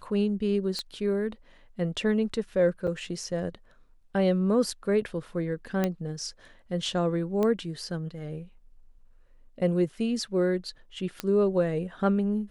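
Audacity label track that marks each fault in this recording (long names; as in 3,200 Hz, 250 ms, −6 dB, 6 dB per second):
0.790000	0.790000	click −19 dBFS
2.870000	2.880000	drop-out 5.7 ms
5.840000	5.840000	click −13 dBFS
7.430000	7.430000	click −16 dBFS
11.200000	11.200000	click −14 dBFS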